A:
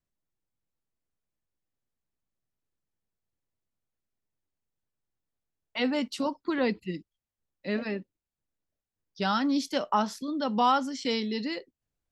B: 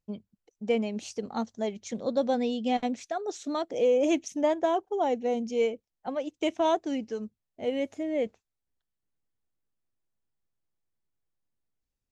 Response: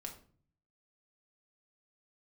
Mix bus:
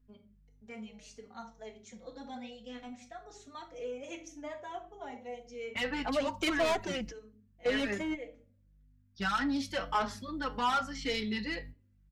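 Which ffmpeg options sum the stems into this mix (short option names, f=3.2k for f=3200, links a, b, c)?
-filter_complex "[0:a]flanger=delay=9.3:depth=1.9:regen=74:speed=1.5:shape=triangular,volume=-1dB,asplit=3[a][b][c];[b]volume=-11dB[d];[1:a]highshelf=f=4.6k:g=10.5,aeval=exprs='val(0)+0.00501*(sin(2*PI*50*n/s)+sin(2*PI*2*50*n/s)/2+sin(2*PI*3*50*n/s)/3+sin(2*PI*4*50*n/s)/4+sin(2*PI*5*50*n/s)/5)':c=same,volume=2dB,asplit=2[e][f];[f]volume=-17dB[g];[c]apad=whole_len=534240[h];[e][h]sidechaingate=range=-33dB:threshold=-55dB:ratio=16:detection=peak[i];[2:a]atrim=start_sample=2205[j];[d][g]amix=inputs=2:normalize=0[k];[k][j]afir=irnorm=-1:irlink=0[l];[a][i][l]amix=inputs=3:normalize=0,equalizer=f=1.7k:w=0.8:g=11.5,asoftclip=type=tanh:threshold=-23dB,asplit=2[m][n];[n]adelay=4.3,afreqshift=-1.8[o];[m][o]amix=inputs=2:normalize=1"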